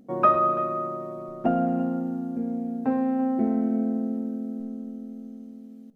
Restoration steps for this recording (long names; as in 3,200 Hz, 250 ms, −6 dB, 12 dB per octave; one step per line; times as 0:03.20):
echo removal 336 ms −16.5 dB